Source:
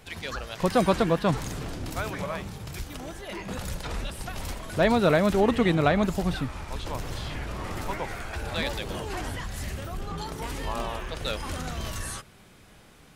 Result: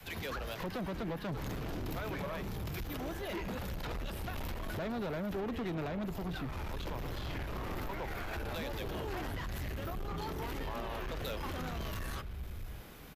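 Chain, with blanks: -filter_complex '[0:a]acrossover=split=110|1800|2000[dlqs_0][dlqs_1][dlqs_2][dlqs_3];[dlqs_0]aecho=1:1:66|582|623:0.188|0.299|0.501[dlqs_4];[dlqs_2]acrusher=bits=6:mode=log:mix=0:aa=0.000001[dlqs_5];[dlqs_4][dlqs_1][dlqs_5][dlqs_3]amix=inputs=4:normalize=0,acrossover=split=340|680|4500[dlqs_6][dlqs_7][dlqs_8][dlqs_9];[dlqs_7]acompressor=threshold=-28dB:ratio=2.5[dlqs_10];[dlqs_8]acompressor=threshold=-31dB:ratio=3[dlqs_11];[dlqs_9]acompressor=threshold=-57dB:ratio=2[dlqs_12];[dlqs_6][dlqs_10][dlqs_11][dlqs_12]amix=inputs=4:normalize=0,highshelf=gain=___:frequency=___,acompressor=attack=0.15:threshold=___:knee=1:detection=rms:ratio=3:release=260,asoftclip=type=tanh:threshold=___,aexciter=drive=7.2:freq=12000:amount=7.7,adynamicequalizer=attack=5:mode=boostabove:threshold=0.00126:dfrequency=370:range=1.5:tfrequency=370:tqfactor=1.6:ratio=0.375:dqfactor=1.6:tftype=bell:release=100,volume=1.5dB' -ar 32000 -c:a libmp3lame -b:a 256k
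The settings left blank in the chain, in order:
-10, 9800, -29dB, -36.5dB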